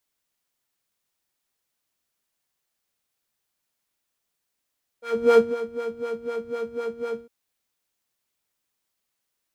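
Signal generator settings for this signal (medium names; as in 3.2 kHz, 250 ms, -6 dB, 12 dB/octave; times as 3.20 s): synth patch with filter wobble A#4, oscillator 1 square, interval +12 st, oscillator 2 level -16 dB, sub -12 dB, noise -6.5 dB, filter bandpass, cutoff 170 Hz, Q 1.3, filter envelope 1.5 oct, attack 352 ms, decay 0.18 s, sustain -15 dB, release 0.08 s, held 2.18 s, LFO 4 Hz, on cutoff 1.9 oct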